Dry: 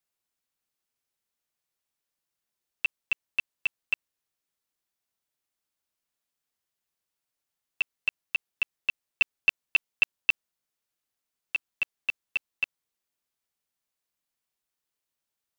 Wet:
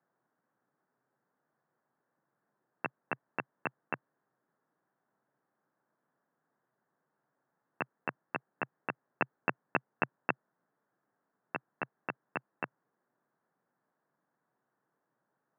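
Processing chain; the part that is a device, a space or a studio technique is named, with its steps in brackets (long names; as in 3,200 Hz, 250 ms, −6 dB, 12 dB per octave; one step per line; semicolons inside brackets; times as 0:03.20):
Chebyshev band-pass filter 130–1,700 Hz, order 4
through cloth (high-shelf EQ 2,400 Hz −13.5 dB)
level +16.5 dB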